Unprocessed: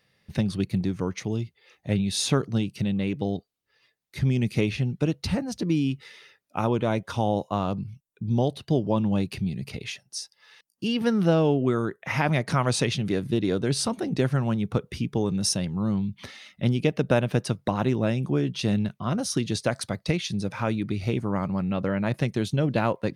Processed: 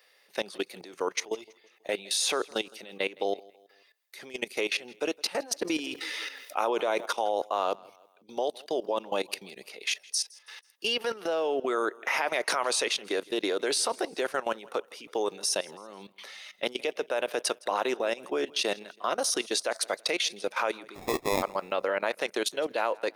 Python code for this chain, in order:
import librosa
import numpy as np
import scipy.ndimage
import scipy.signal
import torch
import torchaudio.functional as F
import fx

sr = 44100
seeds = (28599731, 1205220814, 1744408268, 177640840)

y = scipy.signal.sosfilt(scipy.signal.butter(4, 440.0, 'highpass', fs=sr, output='sos'), x)
y = fx.high_shelf(y, sr, hz=9600.0, db=6.5)
y = fx.level_steps(y, sr, step_db=18)
y = fx.sample_hold(y, sr, seeds[0], rate_hz=1500.0, jitter_pct=0, at=(20.94, 21.41), fade=0.02)
y = fx.echo_feedback(y, sr, ms=163, feedback_pct=44, wet_db=-23.5)
y = fx.env_flatten(y, sr, amount_pct=50, at=(5.61, 7.06))
y = y * librosa.db_to_amplitude(8.5)